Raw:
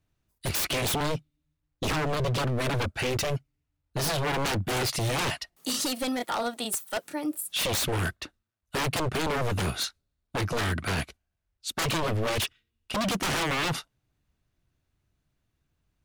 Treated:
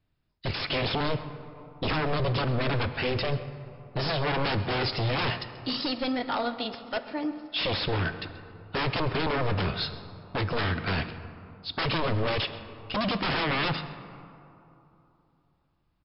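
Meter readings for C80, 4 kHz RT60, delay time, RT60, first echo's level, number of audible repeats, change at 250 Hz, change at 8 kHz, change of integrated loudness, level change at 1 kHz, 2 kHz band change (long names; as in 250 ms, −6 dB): 11.5 dB, 1.3 s, 133 ms, 3.0 s, −17.5 dB, 1, +0.5 dB, below −40 dB, −0.5 dB, +0.5 dB, +0.5 dB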